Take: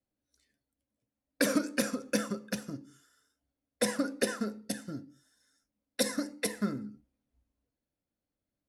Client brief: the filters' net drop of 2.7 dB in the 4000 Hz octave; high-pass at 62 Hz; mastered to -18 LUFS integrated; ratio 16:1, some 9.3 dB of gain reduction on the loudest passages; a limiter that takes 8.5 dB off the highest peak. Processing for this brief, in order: HPF 62 Hz; bell 4000 Hz -3.5 dB; compressor 16:1, threshold -32 dBFS; gain +24 dB; limiter -3.5 dBFS

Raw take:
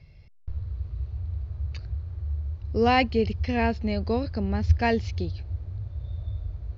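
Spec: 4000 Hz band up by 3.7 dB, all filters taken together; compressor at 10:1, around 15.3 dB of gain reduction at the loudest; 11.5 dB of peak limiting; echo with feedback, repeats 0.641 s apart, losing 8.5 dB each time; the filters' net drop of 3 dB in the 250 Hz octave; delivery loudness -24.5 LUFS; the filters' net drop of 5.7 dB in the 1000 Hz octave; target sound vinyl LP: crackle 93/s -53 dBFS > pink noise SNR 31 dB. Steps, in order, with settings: bell 250 Hz -3 dB; bell 1000 Hz -9 dB; bell 4000 Hz +6 dB; compressor 10:1, threshold -29 dBFS; limiter -32.5 dBFS; feedback echo 0.641 s, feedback 38%, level -8.5 dB; crackle 93/s -53 dBFS; pink noise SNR 31 dB; gain +16 dB

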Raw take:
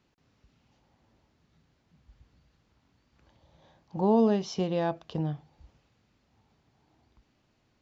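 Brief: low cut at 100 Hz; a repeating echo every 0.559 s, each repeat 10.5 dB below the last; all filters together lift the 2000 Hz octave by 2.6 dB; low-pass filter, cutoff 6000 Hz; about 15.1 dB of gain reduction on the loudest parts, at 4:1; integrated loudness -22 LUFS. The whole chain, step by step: HPF 100 Hz; LPF 6000 Hz; bell 2000 Hz +3.5 dB; compressor 4:1, threshold -36 dBFS; feedback echo 0.559 s, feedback 30%, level -10.5 dB; gain +18.5 dB

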